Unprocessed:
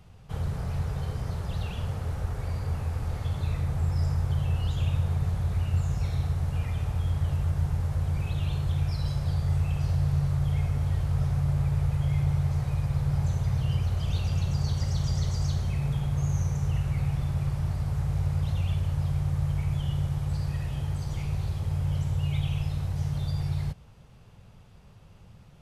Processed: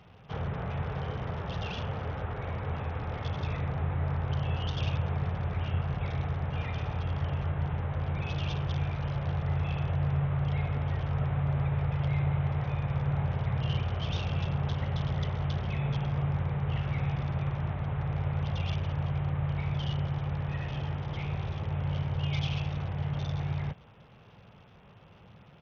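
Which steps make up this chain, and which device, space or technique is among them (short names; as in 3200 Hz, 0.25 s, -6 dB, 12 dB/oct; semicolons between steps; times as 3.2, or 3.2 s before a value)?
Bluetooth headset (HPF 250 Hz 6 dB/oct; downsampling 8000 Hz; gain +4.5 dB; SBC 64 kbps 48000 Hz)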